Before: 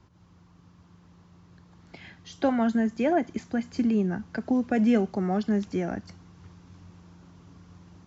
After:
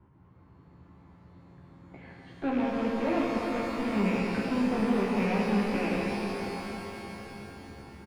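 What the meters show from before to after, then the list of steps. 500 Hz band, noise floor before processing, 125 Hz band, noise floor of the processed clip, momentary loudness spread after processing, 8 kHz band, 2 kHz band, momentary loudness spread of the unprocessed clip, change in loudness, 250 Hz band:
−1.0 dB, −57 dBFS, −1.0 dB, −57 dBFS, 17 LU, can't be measured, +3.0 dB, 10 LU, −3.0 dB, −3.0 dB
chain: loose part that buzzes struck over −38 dBFS, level −16 dBFS
parametric band 4,100 Hz −9.5 dB 1.3 octaves
tube saturation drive 28 dB, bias 0.5
high-frequency loss of the air 420 metres
double-tracking delay 15 ms −5.5 dB
echo with a time of its own for lows and highs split 390 Hz, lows 606 ms, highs 281 ms, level −15 dB
reverb with rising layers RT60 3.8 s, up +12 semitones, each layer −8 dB, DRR −3 dB

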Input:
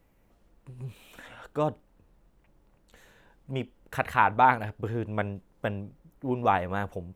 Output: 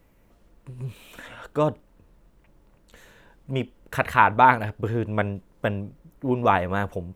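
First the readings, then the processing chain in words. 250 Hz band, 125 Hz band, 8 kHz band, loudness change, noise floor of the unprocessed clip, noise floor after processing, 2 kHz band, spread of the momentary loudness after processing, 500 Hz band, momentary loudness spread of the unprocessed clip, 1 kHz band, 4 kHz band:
+5.5 dB, +5.5 dB, can't be measured, +5.0 dB, −65 dBFS, −59 dBFS, +5.5 dB, 19 LU, +5.5 dB, 20 LU, +4.5 dB, +5.5 dB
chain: notch filter 780 Hz, Q 12
level +5.5 dB

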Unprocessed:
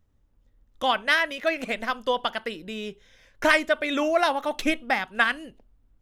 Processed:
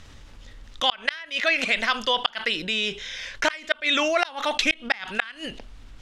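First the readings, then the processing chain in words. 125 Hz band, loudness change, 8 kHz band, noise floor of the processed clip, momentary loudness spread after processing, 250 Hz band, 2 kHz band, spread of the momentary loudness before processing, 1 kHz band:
can't be measured, +1.0 dB, +5.0 dB, −47 dBFS, 8 LU, −3.5 dB, +0.5 dB, 13 LU, −2.0 dB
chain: low-pass filter 4,800 Hz 12 dB per octave
tilt shelving filter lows −10 dB, about 1,400 Hz
gate with flip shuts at −10 dBFS, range −38 dB
envelope flattener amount 50%
level +2 dB

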